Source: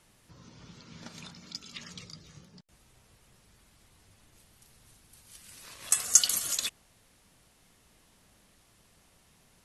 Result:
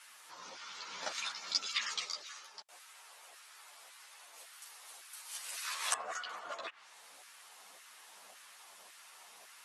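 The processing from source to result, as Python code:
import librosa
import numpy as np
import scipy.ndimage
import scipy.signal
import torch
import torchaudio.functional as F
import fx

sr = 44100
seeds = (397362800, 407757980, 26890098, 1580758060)

y = fx.env_lowpass_down(x, sr, base_hz=790.0, full_db=-27.0)
y = fx.highpass(y, sr, hz=410.0, slope=12, at=(2.03, 5.72))
y = fx.filter_lfo_highpass(y, sr, shape='saw_down', hz=1.8, low_hz=620.0, high_hz=1500.0, q=1.5)
y = fx.ensemble(y, sr)
y = y * librosa.db_to_amplitude(11.5)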